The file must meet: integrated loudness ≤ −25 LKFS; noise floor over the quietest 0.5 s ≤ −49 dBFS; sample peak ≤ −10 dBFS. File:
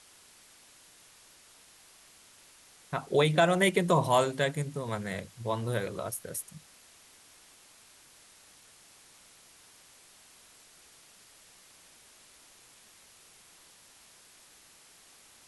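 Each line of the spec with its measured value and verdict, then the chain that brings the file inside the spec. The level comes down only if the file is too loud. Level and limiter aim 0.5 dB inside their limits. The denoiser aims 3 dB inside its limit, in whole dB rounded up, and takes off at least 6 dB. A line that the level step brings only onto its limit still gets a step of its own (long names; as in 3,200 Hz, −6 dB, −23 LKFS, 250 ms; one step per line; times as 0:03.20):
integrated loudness −29.0 LKFS: in spec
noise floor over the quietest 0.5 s −58 dBFS: in spec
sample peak −10.5 dBFS: in spec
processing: no processing needed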